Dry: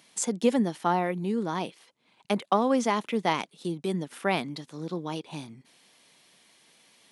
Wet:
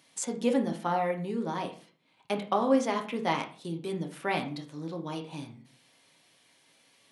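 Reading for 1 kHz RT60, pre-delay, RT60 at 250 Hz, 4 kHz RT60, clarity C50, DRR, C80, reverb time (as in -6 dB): 0.40 s, 3 ms, 0.50 s, 0.35 s, 11.0 dB, 2.5 dB, 16.0 dB, 0.40 s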